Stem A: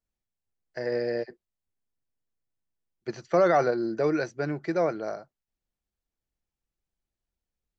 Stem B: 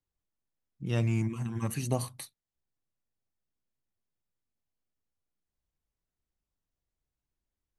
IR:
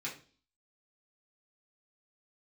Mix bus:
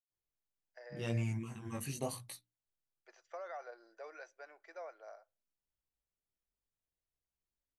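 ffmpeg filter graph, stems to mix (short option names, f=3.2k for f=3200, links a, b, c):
-filter_complex "[0:a]highpass=f=620:w=0.5412,highpass=f=620:w=1.3066,bandreject=f=4.3k:w=6.1,acompressor=threshold=-26dB:ratio=6,volume=-18dB,asplit=2[a][b];[b]volume=-20.5dB[c];[1:a]bandreject=f=60:t=h:w=6,bandreject=f=120:t=h:w=6,bandreject=f=180:t=h:w=6,bandreject=f=240:t=h:w=6,bandreject=f=300:t=h:w=6,flanger=delay=16.5:depth=5.2:speed=0.85,adynamicequalizer=threshold=0.00316:dfrequency=1600:dqfactor=0.7:tfrequency=1600:tqfactor=0.7:attack=5:release=100:ratio=0.375:range=2:mode=boostabove:tftype=highshelf,adelay=100,volume=-5.5dB[d];[2:a]atrim=start_sample=2205[e];[c][e]afir=irnorm=-1:irlink=0[f];[a][d][f]amix=inputs=3:normalize=0,equalizer=f=540:w=1.5:g=3"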